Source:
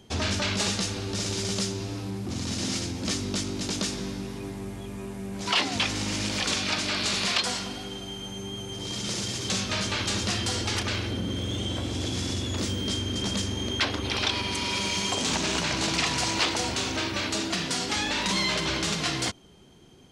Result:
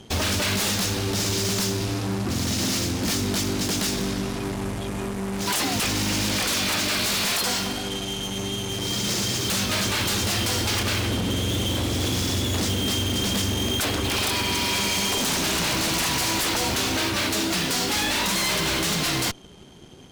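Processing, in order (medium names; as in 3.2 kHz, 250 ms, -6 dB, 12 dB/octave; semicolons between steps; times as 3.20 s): wavefolder -25.5 dBFS; Chebyshev shaper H 8 -15 dB, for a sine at -25.5 dBFS; trim +6.5 dB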